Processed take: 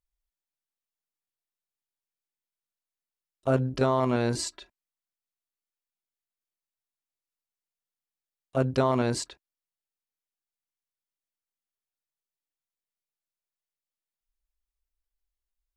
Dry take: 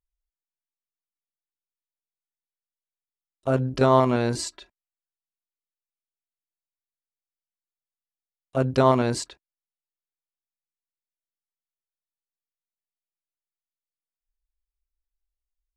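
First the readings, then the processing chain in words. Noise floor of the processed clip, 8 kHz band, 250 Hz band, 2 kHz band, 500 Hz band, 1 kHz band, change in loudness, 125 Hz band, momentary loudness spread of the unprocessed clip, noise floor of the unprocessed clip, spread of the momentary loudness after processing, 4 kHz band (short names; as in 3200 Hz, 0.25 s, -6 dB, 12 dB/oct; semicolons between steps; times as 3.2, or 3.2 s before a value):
under -85 dBFS, -1.5 dB, -3.5 dB, -3.0 dB, -4.5 dB, -6.0 dB, -4.5 dB, -3.5 dB, 14 LU, under -85 dBFS, 9 LU, -2.5 dB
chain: limiter -10 dBFS, peak gain reduction 5 dB; vocal rider within 3 dB 0.5 s; gain -1.5 dB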